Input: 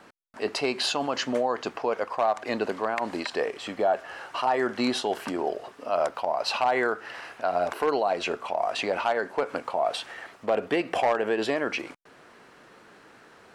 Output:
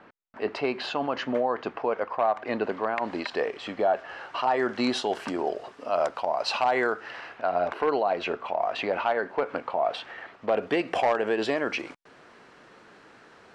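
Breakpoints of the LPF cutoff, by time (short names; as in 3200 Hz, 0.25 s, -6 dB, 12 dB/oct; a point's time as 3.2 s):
2.46 s 2600 Hz
3.36 s 4500 Hz
4.38 s 4500 Hz
4.97 s 7400 Hz
6.88 s 7400 Hz
7.42 s 3300 Hz
10.33 s 3300 Hz
10.78 s 7200 Hz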